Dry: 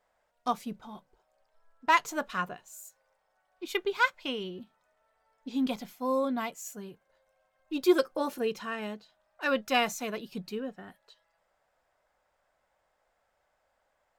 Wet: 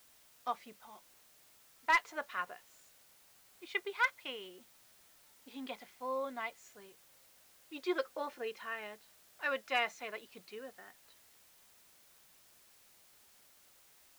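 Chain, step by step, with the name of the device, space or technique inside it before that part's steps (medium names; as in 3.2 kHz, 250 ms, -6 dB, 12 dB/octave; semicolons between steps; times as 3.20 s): drive-through speaker (band-pass 480–3900 Hz; peaking EQ 2 kHz +7 dB 0.36 oct; hard clipper -14 dBFS, distortion -18 dB; white noise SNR 22 dB); trim -6.5 dB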